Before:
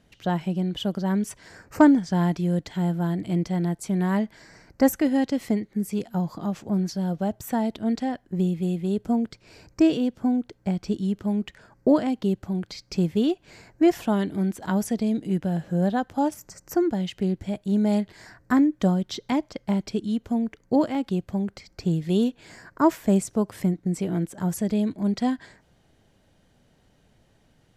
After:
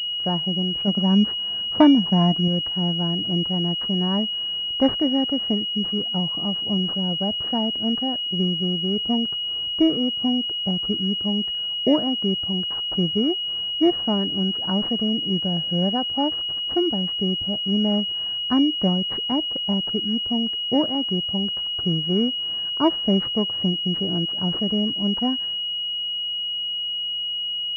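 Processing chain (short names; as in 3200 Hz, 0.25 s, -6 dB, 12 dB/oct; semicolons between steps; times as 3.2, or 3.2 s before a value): 0.87–2.48 small resonant body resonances 210/690/1000 Hz, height 8 dB; pulse-width modulation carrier 2900 Hz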